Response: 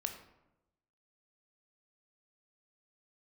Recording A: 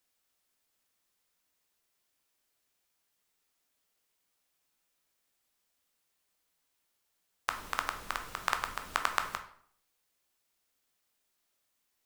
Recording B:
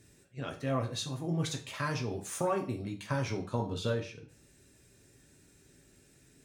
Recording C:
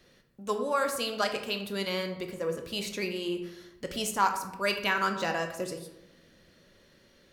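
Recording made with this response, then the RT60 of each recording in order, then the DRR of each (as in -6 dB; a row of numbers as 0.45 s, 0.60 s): C; 0.60 s, 0.40 s, 0.95 s; 5.5 dB, 1.5 dB, 5.0 dB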